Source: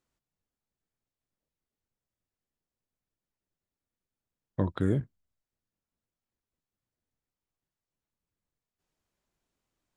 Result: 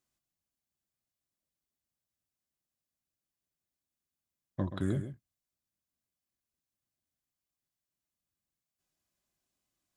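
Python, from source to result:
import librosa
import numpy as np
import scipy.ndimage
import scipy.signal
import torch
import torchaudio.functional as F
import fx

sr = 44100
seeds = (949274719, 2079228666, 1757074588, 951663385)

p1 = fx.high_shelf(x, sr, hz=3500.0, db=9.5)
p2 = fx.notch_comb(p1, sr, f0_hz=460.0)
p3 = p2 + fx.echo_single(p2, sr, ms=128, db=-10.5, dry=0)
y = p3 * 10.0 ** (-4.5 / 20.0)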